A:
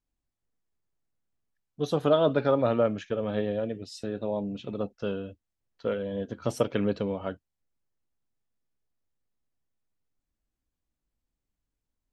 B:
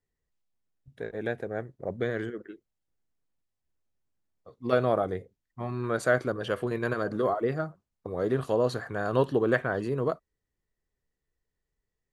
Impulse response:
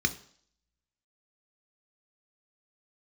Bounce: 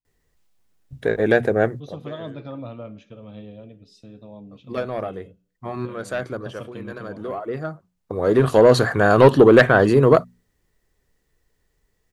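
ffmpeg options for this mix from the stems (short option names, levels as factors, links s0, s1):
-filter_complex "[0:a]volume=0.266,asplit=3[s0][s1][s2];[s1]volume=0.224[s3];[1:a]bandreject=f=60:t=h:w=6,bandreject=f=120:t=h:w=6,bandreject=f=180:t=h:w=6,bandreject=f=240:t=h:w=6,acontrast=73,aeval=exprs='0.531*sin(PI/2*1.41*val(0)/0.531)':c=same,adelay=50,volume=1.26[s4];[s2]apad=whole_len=537037[s5];[s4][s5]sidechaincompress=threshold=0.002:ratio=10:attack=23:release=1170[s6];[2:a]atrim=start_sample=2205[s7];[s3][s7]afir=irnorm=-1:irlink=0[s8];[s0][s6][s8]amix=inputs=3:normalize=0"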